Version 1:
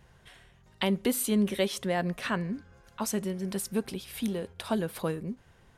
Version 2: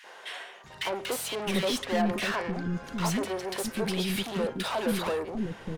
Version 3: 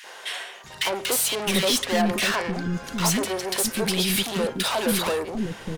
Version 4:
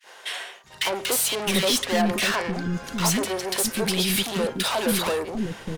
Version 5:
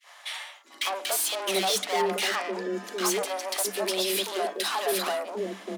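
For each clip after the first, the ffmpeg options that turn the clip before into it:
-filter_complex "[0:a]asplit=2[s0][s1];[s1]highpass=f=720:p=1,volume=39.8,asoftclip=type=tanh:threshold=0.188[s2];[s0][s2]amix=inputs=2:normalize=0,lowpass=f=2500:p=1,volume=0.501,acrossover=split=340|1500[s3][s4][s5];[s4]adelay=40[s6];[s3]adelay=640[s7];[s7][s6][s5]amix=inputs=3:normalize=0,volume=0.596"
-af "highshelf=f=3400:g=10,volume=1.58"
-af "agate=range=0.0224:threshold=0.0141:ratio=3:detection=peak"
-af "afreqshift=190,volume=0.631"

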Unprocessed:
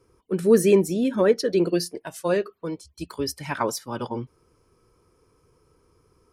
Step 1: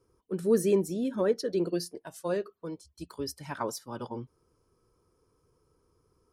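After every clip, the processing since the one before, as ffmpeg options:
-af "equalizer=f=2300:t=o:w=0.77:g=-6.5,volume=0.422"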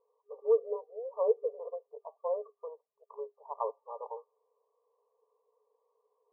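-af "afftfilt=real='re*between(b*sr/4096,410,1200)':imag='im*between(b*sr/4096,410,1200)':win_size=4096:overlap=0.75"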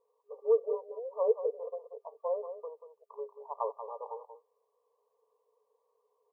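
-af "aecho=1:1:185:0.316"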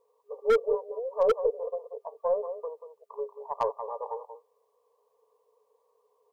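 -af "acontrast=77,aeval=exprs='0.188*(abs(mod(val(0)/0.188+3,4)-2)-1)':c=same,aeval=exprs='0.188*(cos(1*acos(clip(val(0)/0.188,-1,1)))-cos(1*PI/2))+0.00841*(cos(2*acos(clip(val(0)/0.188,-1,1)))-cos(2*PI/2))':c=same,volume=0.891"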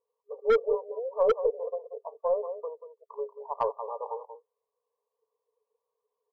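-af "afftdn=nr=15:nf=-47"

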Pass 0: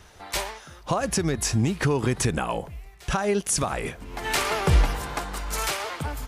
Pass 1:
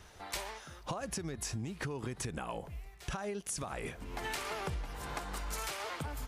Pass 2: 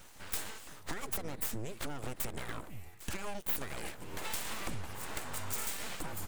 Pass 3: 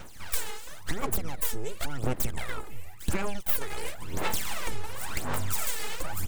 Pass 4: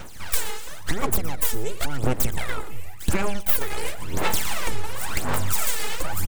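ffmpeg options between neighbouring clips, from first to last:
-af "acompressor=threshold=0.0316:ratio=12,volume=0.562"
-af "aeval=exprs='abs(val(0))':c=same,aexciter=amount=2.5:drive=2.8:freq=7200,volume=1.19"
-af "aphaser=in_gain=1:out_gain=1:delay=2.4:decay=0.7:speed=0.94:type=sinusoidal,volume=1.41"
-af "aecho=1:1:117:0.141,volume=2"

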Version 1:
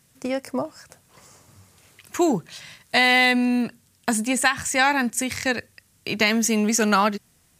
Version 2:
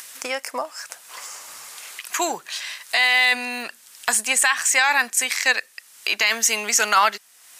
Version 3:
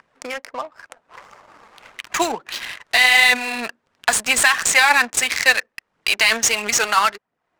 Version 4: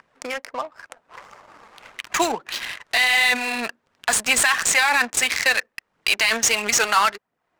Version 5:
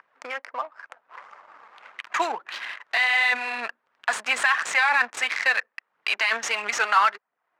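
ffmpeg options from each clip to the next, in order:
-filter_complex "[0:a]highpass=1000,asplit=2[s0][s1];[s1]acompressor=mode=upward:threshold=0.0355:ratio=2.5,volume=1.41[s2];[s0][s2]amix=inputs=2:normalize=0,alimiter=limit=0.447:level=0:latency=1:release=14"
-af "dynaudnorm=f=230:g=11:m=2.24,aphaser=in_gain=1:out_gain=1:delay=4.7:decay=0.4:speed=1.5:type=triangular,adynamicsmooth=sensitivity=3:basefreq=550,volume=0.841"
-af "alimiter=limit=0.376:level=0:latency=1:release=14"
-af "bandpass=f=1300:t=q:w=0.93:csg=0"

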